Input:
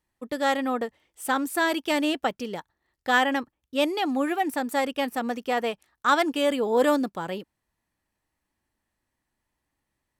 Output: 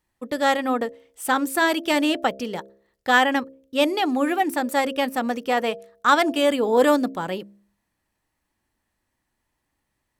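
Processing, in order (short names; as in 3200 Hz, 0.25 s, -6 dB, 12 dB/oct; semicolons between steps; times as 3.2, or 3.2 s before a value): de-hum 67.11 Hz, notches 10; gain +4 dB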